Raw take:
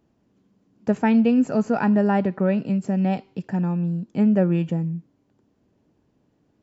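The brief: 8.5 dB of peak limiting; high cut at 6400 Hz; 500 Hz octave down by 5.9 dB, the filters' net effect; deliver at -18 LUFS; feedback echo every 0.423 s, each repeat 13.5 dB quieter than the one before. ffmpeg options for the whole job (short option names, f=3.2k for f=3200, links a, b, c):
-af "lowpass=6.4k,equalizer=f=500:t=o:g=-7.5,alimiter=limit=-19.5dB:level=0:latency=1,aecho=1:1:423|846:0.211|0.0444,volume=9dB"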